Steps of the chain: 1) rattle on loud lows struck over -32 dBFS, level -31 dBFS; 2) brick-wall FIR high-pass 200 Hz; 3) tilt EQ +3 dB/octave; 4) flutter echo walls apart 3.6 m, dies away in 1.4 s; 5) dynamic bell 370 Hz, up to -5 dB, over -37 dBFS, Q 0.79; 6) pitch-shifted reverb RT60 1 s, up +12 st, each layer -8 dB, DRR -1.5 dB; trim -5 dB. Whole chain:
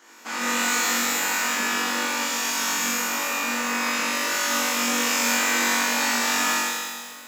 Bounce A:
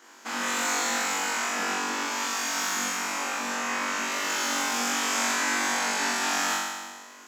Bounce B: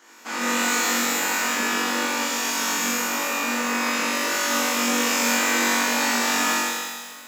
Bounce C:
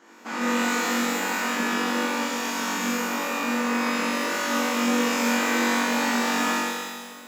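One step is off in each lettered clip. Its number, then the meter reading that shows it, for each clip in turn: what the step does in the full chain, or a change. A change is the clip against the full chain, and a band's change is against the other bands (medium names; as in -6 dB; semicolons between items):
6, loudness change -4.0 LU; 5, 500 Hz band +3.0 dB; 3, 250 Hz band +8.5 dB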